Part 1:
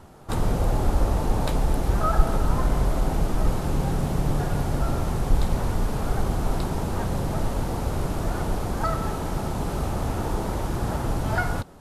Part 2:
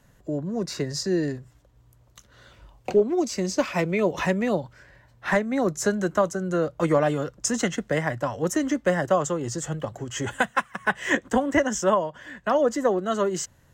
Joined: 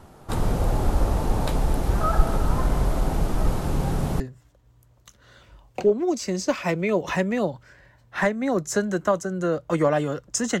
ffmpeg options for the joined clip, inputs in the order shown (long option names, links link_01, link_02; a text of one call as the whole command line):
ffmpeg -i cue0.wav -i cue1.wav -filter_complex "[0:a]apad=whole_dur=10.6,atrim=end=10.6,atrim=end=4.202[link_01];[1:a]atrim=start=1.298:end=7.7[link_02];[link_01][link_02]acrossfade=duration=0.004:curve1=hsin:curve2=hsin" out.wav